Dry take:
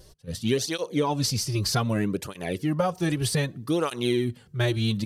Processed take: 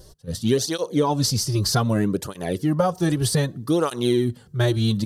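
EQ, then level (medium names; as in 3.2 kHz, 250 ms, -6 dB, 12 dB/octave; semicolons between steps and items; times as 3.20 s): peaking EQ 2.4 kHz -9.5 dB 0.67 oct; +4.5 dB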